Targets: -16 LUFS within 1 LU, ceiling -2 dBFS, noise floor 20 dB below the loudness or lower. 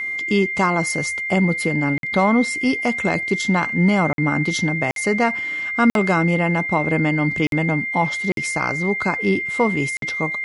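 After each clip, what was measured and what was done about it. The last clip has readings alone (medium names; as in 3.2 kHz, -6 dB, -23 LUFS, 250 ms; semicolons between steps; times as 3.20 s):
dropouts 7; longest dropout 52 ms; steady tone 2.1 kHz; tone level -23 dBFS; loudness -19.5 LUFS; peak level -5.5 dBFS; loudness target -16.0 LUFS
-> interpolate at 1.98/4.13/4.91/5.90/7.47/8.32/9.97 s, 52 ms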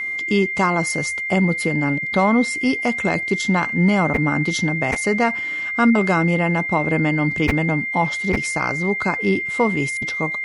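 dropouts 0; steady tone 2.1 kHz; tone level -23 dBFS
-> band-stop 2.1 kHz, Q 30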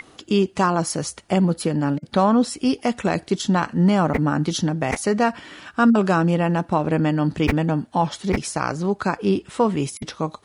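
steady tone not found; loudness -21.5 LUFS; peak level -5.5 dBFS; loudness target -16.0 LUFS
-> trim +5.5 dB; peak limiter -2 dBFS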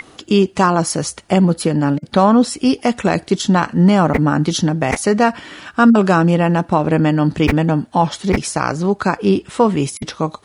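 loudness -16.0 LUFS; peak level -2.0 dBFS; noise floor -47 dBFS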